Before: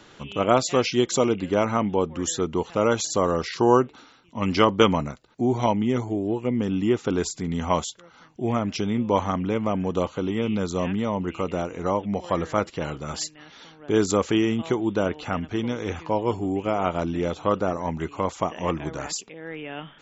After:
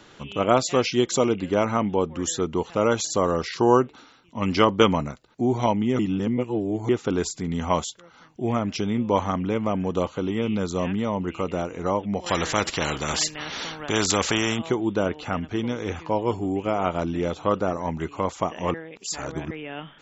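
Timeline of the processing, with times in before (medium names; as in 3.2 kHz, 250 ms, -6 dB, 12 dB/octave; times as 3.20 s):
5.99–6.89 s: reverse
12.26–14.59 s: spectrum-flattening compressor 2:1
18.74–19.51 s: reverse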